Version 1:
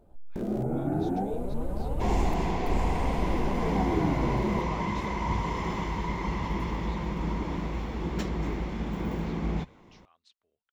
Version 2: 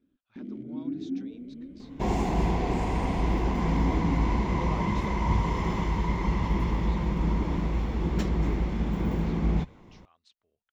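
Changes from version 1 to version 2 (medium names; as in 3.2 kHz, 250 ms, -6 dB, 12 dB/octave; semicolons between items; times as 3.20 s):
first sound: add vowel filter i; master: add bass shelf 220 Hz +6.5 dB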